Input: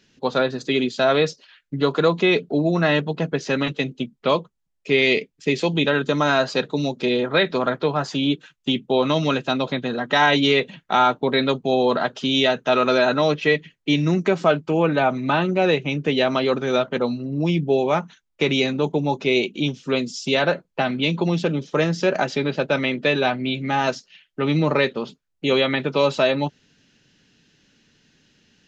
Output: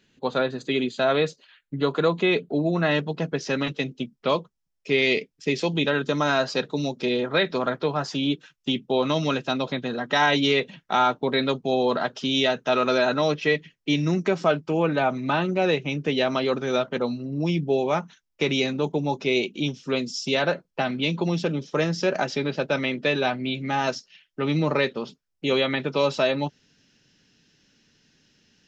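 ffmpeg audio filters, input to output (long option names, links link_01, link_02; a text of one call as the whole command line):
ffmpeg -i in.wav -af "asetnsamples=nb_out_samples=441:pad=0,asendcmd='2.91 equalizer g 7',equalizer=frequency=5400:width=5.1:gain=-11,volume=-3.5dB" out.wav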